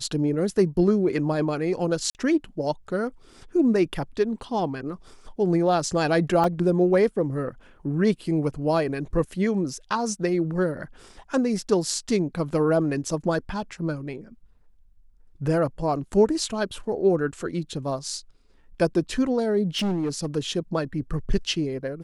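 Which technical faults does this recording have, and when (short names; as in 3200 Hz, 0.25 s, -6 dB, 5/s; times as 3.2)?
2.1–2.15 gap 49 ms
6.44 gap 2.1 ms
19.77–20.27 clipped -22 dBFS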